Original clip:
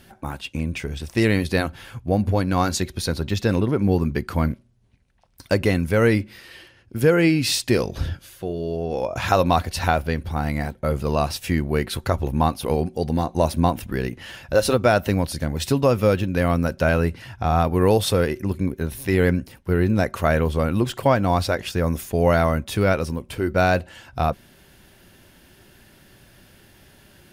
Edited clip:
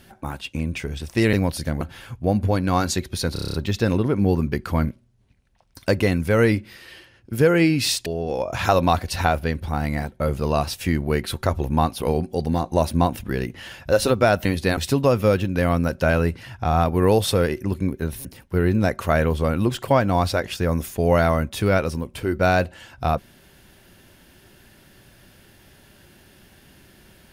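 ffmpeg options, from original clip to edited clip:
-filter_complex "[0:a]asplit=14[a][b][c][d][e][f][g][h][i][j][k][l][m][n];[a]atrim=end=1.332[o];[b]atrim=start=15.078:end=15.562[p];[c]atrim=start=1.648:end=3.202[q];[d]atrim=start=3.168:end=3.202[r];[e]atrim=start=3.168:end=3.202[s];[f]atrim=start=3.168:end=3.202[t];[g]atrim=start=3.168:end=3.202[u];[h]atrim=start=3.168:end=3.202[v];[i]atrim=start=3.168:end=3.202[w];[j]atrim=start=3.168:end=7.692[x];[k]atrim=start=8.688:end=15.082[y];[l]atrim=start=1.328:end=1.652[z];[m]atrim=start=15.558:end=19.042[aa];[n]atrim=start=19.398[ab];[o][p]acrossfade=d=0.004:c1=hsin:c2=hsin[ac];[ac][q]acrossfade=d=0.004:c1=hsin:c2=hsin[ad];[ad][r]acrossfade=d=0.004:c1=hsin:c2=hsin[ae];[ae][s]acrossfade=d=0.004:c1=hsin:c2=hsin[af];[af][t]acrossfade=d=0.004:c1=hsin:c2=hsin[ag];[ag][u]acrossfade=d=0.004:c1=hsin:c2=hsin[ah];[ah][v]acrossfade=d=0.004:c1=hsin:c2=hsin[ai];[ai][w]acrossfade=d=0.004:c1=hsin:c2=hsin[aj];[aj][x]acrossfade=d=0.004:c1=hsin:c2=hsin[ak];[ak][y]acrossfade=d=0.004:c1=hsin:c2=hsin[al];[al][z]acrossfade=d=0.004:c1=hsin:c2=hsin[am];[am][aa]acrossfade=d=0.004:c1=hsin:c2=hsin[an];[an][ab]acrossfade=d=0.004:c1=hsin:c2=hsin"

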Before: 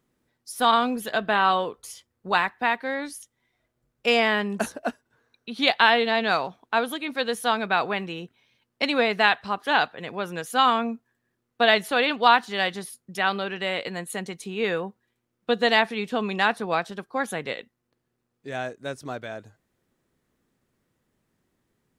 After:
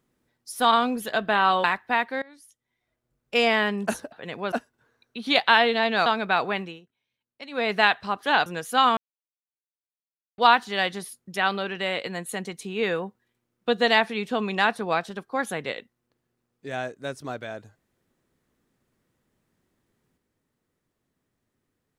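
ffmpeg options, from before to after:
-filter_complex "[0:a]asplit=11[a][b][c][d][e][f][g][h][i][j][k];[a]atrim=end=1.642[l];[b]atrim=start=2.358:end=2.94,asetpts=PTS-STARTPTS,afade=t=out:st=0.578:d=0.004:c=hsin:silence=0.0707946[m];[c]atrim=start=2.94:end=4.842,asetpts=PTS-STARTPTS,afade=t=in:d=1.31:silence=0.0707946[n];[d]atrim=start=9.868:end=10.272[o];[e]atrim=start=4.838:end=6.382[p];[f]atrim=start=7.468:end=8.22,asetpts=PTS-STARTPTS,afade=t=out:st=0.542:d=0.21:silence=0.149624[q];[g]atrim=start=8.22:end=8.91,asetpts=PTS-STARTPTS,volume=-16.5dB[r];[h]atrim=start=8.91:end=9.872,asetpts=PTS-STARTPTS,afade=t=in:d=0.21:silence=0.149624[s];[i]atrim=start=10.268:end=10.78,asetpts=PTS-STARTPTS,afade=t=out:st=0.508:d=0.004:c=hsin[t];[j]atrim=start=10.78:end=12.19,asetpts=PTS-STARTPTS,volume=0[u];[k]atrim=start=12.19,asetpts=PTS-STARTPTS,afade=t=in:d=0.004:c=hsin[v];[m][n]concat=n=2:v=0:a=1[w];[l][w]acrossfade=d=0.004:c1=hsin:c2=hsin[x];[x][o]acrossfade=d=0.004:c1=hsin:c2=hsin[y];[y][p]acrossfade=d=0.004:c1=hsin:c2=hsin[z];[q][r][s]concat=n=3:v=0:a=1[aa];[z][aa]acrossfade=d=0.004:c1=hsin:c2=hsin[ab];[t][u][v]concat=n=3:v=0:a=1[ac];[ab][ac]acrossfade=d=0.004:c1=hsin:c2=hsin"

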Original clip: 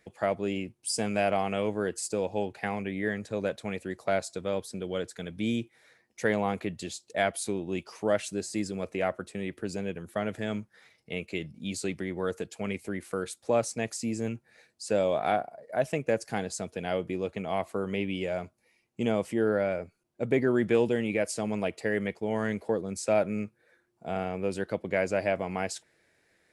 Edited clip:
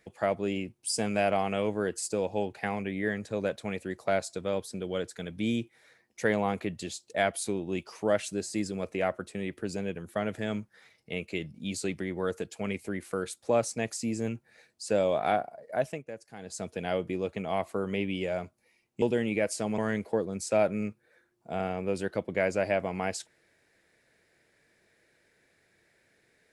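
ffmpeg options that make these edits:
-filter_complex "[0:a]asplit=5[a][b][c][d][e];[a]atrim=end=16.04,asetpts=PTS-STARTPTS,afade=t=out:st=15.75:d=0.29:silence=0.188365[f];[b]atrim=start=16.04:end=16.38,asetpts=PTS-STARTPTS,volume=-14.5dB[g];[c]atrim=start=16.38:end=19.022,asetpts=PTS-STARTPTS,afade=t=in:d=0.29:silence=0.188365[h];[d]atrim=start=20.798:end=21.562[i];[e]atrim=start=22.338[j];[f][g][h]concat=n=3:v=0:a=1[k];[k][i]acrossfade=d=0.004:c1=hsin:c2=hsin[l];[l][j]acrossfade=d=0.004:c1=hsin:c2=hsin"

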